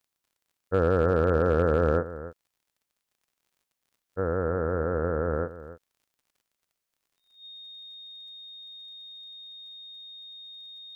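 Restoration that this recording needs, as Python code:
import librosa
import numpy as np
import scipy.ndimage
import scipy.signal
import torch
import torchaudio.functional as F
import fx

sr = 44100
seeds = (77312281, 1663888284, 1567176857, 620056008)

y = fx.fix_declip(x, sr, threshold_db=-13.0)
y = fx.fix_declick_ar(y, sr, threshold=6.5)
y = fx.notch(y, sr, hz=3700.0, q=30.0)
y = fx.fix_echo_inverse(y, sr, delay_ms=290, level_db=-14.5)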